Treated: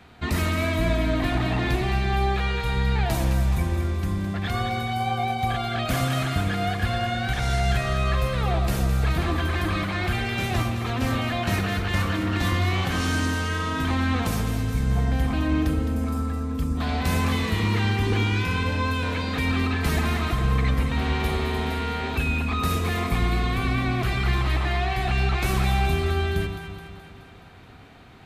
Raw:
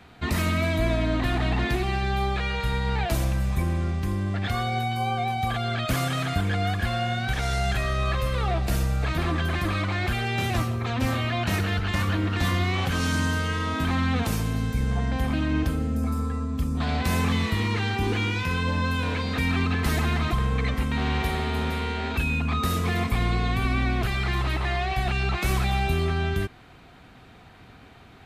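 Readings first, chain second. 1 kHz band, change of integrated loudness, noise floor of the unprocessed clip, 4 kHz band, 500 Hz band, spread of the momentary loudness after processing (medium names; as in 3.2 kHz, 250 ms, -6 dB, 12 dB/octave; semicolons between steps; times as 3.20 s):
+1.0 dB, +1.0 dB, -49 dBFS, +1.0 dB, +1.5 dB, 3 LU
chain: echo whose repeats swap between lows and highs 106 ms, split 1.1 kHz, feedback 75%, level -6 dB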